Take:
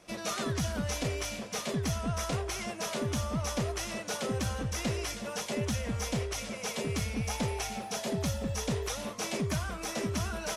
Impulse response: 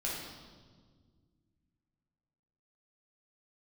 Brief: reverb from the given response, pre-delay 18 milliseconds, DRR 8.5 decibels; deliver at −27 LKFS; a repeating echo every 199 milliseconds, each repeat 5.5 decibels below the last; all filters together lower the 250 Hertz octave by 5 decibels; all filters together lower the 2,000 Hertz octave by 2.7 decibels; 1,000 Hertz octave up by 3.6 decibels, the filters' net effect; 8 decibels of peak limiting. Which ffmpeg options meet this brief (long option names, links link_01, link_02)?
-filter_complex "[0:a]equalizer=frequency=250:width_type=o:gain=-7,equalizer=frequency=1000:width_type=o:gain=6.5,equalizer=frequency=2000:width_type=o:gain=-5.5,alimiter=level_in=5.5dB:limit=-24dB:level=0:latency=1,volume=-5.5dB,aecho=1:1:199|398|597|796|995|1194|1393:0.531|0.281|0.149|0.079|0.0419|0.0222|0.0118,asplit=2[link_01][link_02];[1:a]atrim=start_sample=2205,adelay=18[link_03];[link_02][link_03]afir=irnorm=-1:irlink=0,volume=-12dB[link_04];[link_01][link_04]amix=inputs=2:normalize=0,volume=9dB"